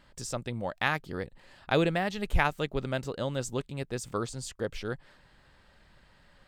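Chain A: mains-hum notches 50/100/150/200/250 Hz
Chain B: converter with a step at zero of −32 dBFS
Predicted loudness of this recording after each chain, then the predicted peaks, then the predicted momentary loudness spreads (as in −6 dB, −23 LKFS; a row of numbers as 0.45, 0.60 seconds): −32.5, −30.5 LKFS; −9.0, −9.5 dBFS; 11, 11 LU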